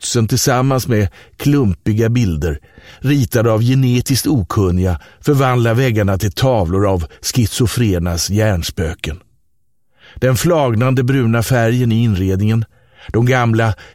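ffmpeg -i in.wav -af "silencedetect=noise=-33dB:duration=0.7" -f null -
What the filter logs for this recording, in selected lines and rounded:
silence_start: 9.21
silence_end: 10.03 | silence_duration: 0.82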